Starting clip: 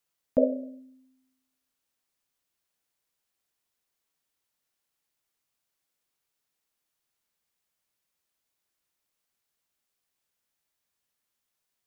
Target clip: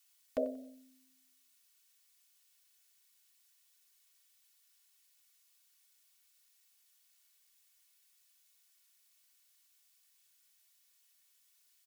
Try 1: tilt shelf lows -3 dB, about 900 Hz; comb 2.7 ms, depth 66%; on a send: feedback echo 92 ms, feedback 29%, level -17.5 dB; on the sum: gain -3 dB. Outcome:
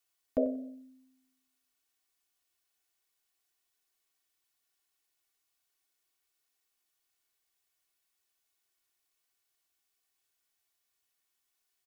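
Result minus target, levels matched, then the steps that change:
1000 Hz band -5.0 dB
change: tilt shelf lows -14 dB, about 900 Hz

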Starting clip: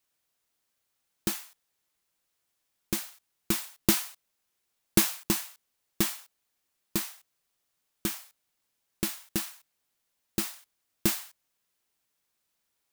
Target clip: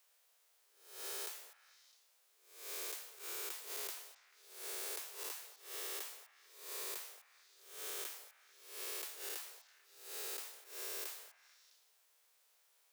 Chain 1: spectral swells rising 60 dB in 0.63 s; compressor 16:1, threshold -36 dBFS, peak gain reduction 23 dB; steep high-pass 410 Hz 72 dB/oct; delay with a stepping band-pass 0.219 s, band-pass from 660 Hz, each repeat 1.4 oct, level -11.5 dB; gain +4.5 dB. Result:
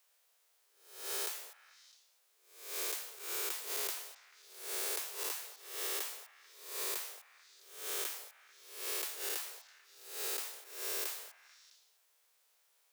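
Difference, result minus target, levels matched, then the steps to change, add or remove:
compressor: peak gain reduction -6 dB
change: compressor 16:1, threshold -42.5 dBFS, peak gain reduction 29 dB

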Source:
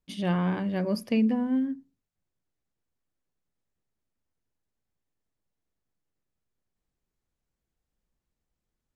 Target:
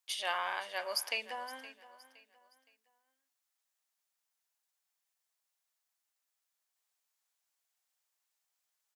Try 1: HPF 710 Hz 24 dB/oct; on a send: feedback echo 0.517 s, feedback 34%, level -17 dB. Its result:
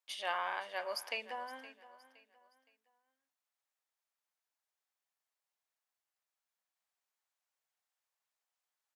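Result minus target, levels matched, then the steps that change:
8000 Hz band -5.5 dB
add after HPF: high shelf 3200 Hz +10 dB

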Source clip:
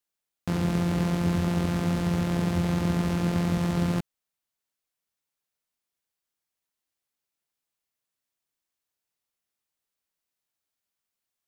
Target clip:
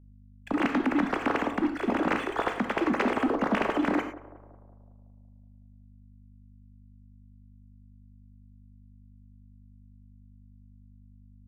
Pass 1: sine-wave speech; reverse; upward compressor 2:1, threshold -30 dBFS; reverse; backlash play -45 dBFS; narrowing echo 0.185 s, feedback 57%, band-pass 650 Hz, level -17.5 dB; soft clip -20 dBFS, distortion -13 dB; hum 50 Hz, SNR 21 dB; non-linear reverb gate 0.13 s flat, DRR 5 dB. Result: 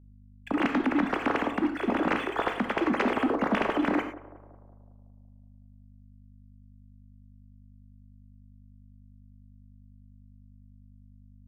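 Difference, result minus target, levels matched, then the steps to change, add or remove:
backlash: distortion -6 dB
change: backlash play -38 dBFS

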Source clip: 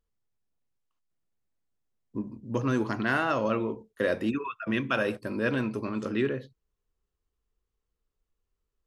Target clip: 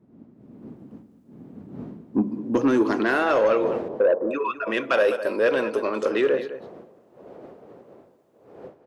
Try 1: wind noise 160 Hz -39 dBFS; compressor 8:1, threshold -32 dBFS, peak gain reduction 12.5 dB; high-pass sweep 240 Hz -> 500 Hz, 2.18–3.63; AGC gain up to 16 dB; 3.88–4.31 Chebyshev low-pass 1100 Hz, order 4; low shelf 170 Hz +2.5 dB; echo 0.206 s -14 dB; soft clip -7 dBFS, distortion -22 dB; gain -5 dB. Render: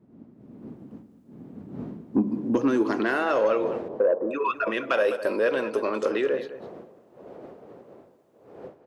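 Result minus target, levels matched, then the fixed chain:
compressor: peak gain reduction +8 dB
wind noise 160 Hz -39 dBFS; compressor 8:1, threshold -23 dBFS, peak gain reduction 5 dB; high-pass sweep 240 Hz -> 500 Hz, 2.18–3.63; AGC gain up to 16 dB; 3.88–4.31 Chebyshev low-pass 1100 Hz, order 4; low shelf 170 Hz +2.5 dB; echo 0.206 s -14 dB; soft clip -7 dBFS, distortion -17 dB; gain -5 dB

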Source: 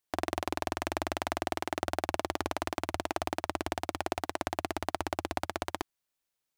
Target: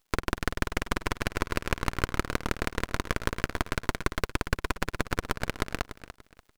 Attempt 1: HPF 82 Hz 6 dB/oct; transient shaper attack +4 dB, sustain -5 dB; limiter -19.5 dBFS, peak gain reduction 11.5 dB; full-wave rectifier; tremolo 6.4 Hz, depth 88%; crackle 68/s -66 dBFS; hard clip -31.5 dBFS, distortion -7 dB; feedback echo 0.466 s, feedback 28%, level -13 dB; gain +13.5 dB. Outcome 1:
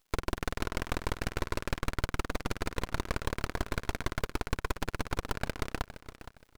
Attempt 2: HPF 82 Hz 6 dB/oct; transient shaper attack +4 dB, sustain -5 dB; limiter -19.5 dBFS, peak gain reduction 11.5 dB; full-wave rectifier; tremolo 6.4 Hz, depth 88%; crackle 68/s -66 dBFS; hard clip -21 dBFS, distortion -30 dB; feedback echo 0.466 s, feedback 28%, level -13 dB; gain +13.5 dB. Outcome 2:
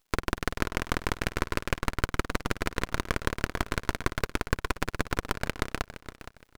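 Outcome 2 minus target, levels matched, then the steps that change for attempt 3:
echo 0.175 s late
change: feedback echo 0.291 s, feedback 28%, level -13 dB

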